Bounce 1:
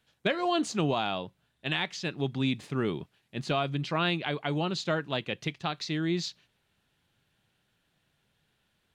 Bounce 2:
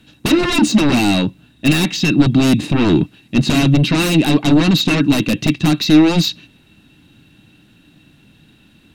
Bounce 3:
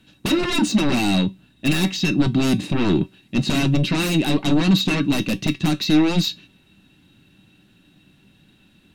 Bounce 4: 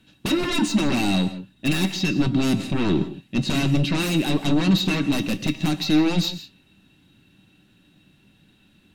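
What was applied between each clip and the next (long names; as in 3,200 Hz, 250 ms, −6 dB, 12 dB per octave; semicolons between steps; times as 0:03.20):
sine wavefolder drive 15 dB, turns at −15.5 dBFS; low shelf with overshoot 290 Hz +6.5 dB, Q 1.5; hollow resonant body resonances 300/2,700/3,800 Hz, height 16 dB, ringing for 45 ms; level −2.5 dB
tuned comb filter 190 Hz, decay 0.17 s, harmonics all, mix 60%
reverb whose tail is shaped and stops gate 190 ms rising, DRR 12 dB; level −2.5 dB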